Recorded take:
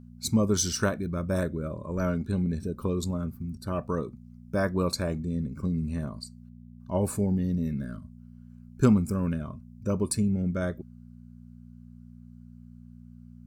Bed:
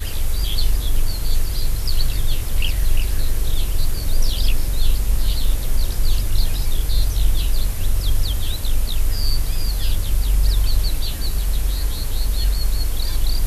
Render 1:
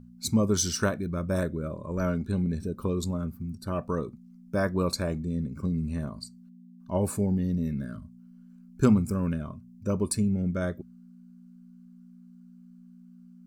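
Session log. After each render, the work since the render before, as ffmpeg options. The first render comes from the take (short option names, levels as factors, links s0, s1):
-af "bandreject=f=60:t=h:w=4,bandreject=f=120:t=h:w=4"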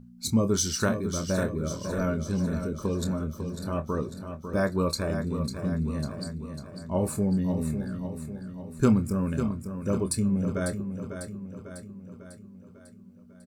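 -filter_complex "[0:a]asplit=2[s0][s1];[s1]adelay=26,volume=0.316[s2];[s0][s2]amix=inputs=2:normalize=0,asplit=2[s3][s4];[s4]aecho=0:1:548|1096|1644|2192|2740|3288|3836:0.376|0.207|0.114|0.0625|0.0344|0.0189|0.0104[s5];[s3][s5]amix=inputs=2:normalize=0"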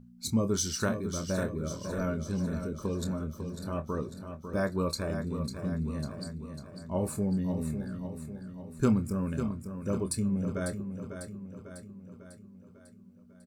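-af "volume=0.631"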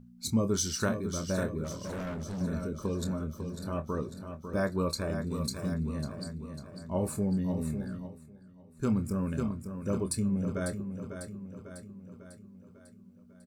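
-filter_complex "[0:a]asettb=1/sr,asplit=3[s0][s1][s2];[s0]atrim=end=1.644[s3];[s1]atrim=start=1.64:end=2.41,asetpts=PTS-STARTPTS,afade=t=in:d=0.004:c=qsin,afade=t=out:st=0.766:d=0.004:c=qsin,asoftclip=type=hard:threshold=0.02[s4];[s2]atrim=start=2.406[s5];[s3][s4]acrossfade=d=0.004:c1=hsin:c2=qsin[s6];[s6][s5]acrossfade=d=0.004:c1=qsin:c2=hsin,asettb=1/sr,asplit=3[s7][s8][s9];[s7]atrim=end=5.314[s10];[s8]atrim=start=5.31:end=5.74,asetpts=PTS-STARTPTS,afade=t=in:d=0.004:c=qsin,afade=t=out:st=0.426:d=0.004:c=qsin,highshelf=f=3300:g=11[s11];[s9]atrim=start=5.736[s12];[s10][s11]acrossfade=d=0.004:c1=hsin:c2=qsin[s13];[s13][s12]acrossfade=d=0.004:c1=qsin:c2=hsin,asplit=3[s14][s15][s16];[s14]atrim=end=8.19,asetpts=PTS-STARTPTS,afade=t=out:st=7.92:d=0.27:silence=0.266073[s17];[s15]atrim=start=8.19:end=8.75,asetpts=PTS-STARTPTS,volume=0.266[s18];[s16]atrim=start=8.75,asetpts=PTS-STARTPTS,afade=t=in:d=0.27:silence=0.266073[s19];[s17][s18][s19]concat=n=3:v=0:a=1"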